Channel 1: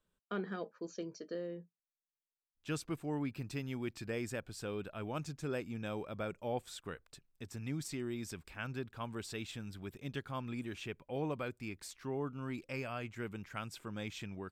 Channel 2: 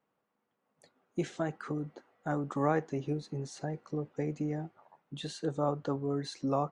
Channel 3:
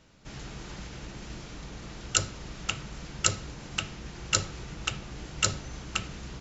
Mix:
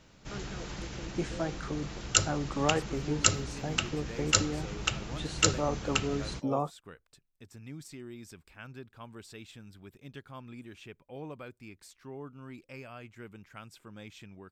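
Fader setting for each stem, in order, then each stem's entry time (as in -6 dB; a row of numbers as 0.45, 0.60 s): -5.0, 0.0, +1.0 dB; 0.00, 0.00, 0.00 s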